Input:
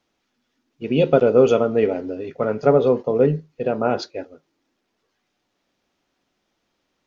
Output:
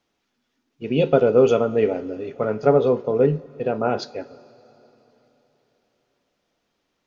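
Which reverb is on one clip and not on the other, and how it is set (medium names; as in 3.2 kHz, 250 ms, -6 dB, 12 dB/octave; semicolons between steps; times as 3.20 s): two-slope reverb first 0.26 s, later 3.9 s, from -18 dB, DRR 13 dB; trim -1.5 dB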